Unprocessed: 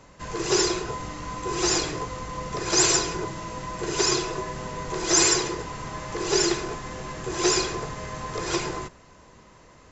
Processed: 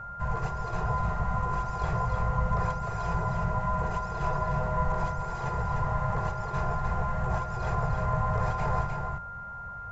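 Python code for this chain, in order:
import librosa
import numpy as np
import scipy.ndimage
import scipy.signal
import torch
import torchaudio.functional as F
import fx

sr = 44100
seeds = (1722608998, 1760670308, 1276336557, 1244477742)

p1 = fx.over_compress(x, sr, threshold_db=-30.0, ratio=-1.0)
p2 = fx.curve_eq(p1, sr, hz=(130.0, 200.0, 300.0, 430.0, 730.0, 3200.0), db=(0, -5, -23, -6, 10, -11))
p3 = p2 + fx.echo_single(p2, sr, ms=303, db=-4.5, dry=0)
p4 = p3 + 10.0 ** (-32.0 / 20.0) * np.sin(2.0 * np.pi * 1400.0 * np.arange(len(p3)) / sr)
p5 = fx.bass_treble(p4, sr, bass_db=13, treble_db=-6)
y = p5 * librosa.db_to_amplitude(-6.0)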